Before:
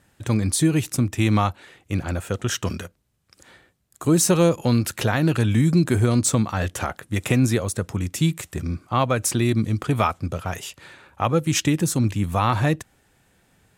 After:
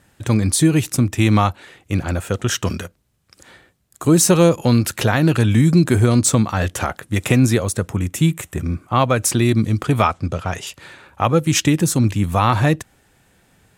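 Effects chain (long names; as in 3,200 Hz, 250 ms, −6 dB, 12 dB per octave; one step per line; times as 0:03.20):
0:07.88–0:08.96: parametric band 4,700 Hz −9 dB 0.61 octaves
0:10.02–0:10.67: low-pass filter 7,900 Hz 12 dB per octave
level +4.5 dB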